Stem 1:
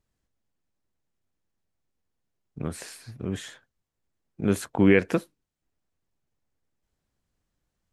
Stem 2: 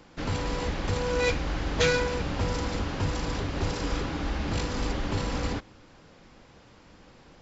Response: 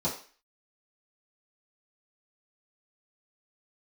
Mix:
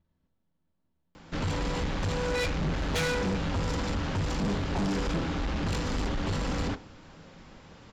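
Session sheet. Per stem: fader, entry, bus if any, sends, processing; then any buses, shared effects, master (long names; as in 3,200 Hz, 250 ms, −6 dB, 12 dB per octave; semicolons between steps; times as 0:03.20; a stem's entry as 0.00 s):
−1.5 dB, 0.00 s, send −5.5 dB, downward compressor, threshold −29 dBFS, peak gain reduction 15 dB; transient designer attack +1 dB, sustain −7 dB; moving average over 5 samples
+2.5 dB, 1.15 s, send −21 dB, no processing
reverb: on, RT60 0.40 s, pre-delay 3 ms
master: soft clipping −25 dBFS, distortion −9 dB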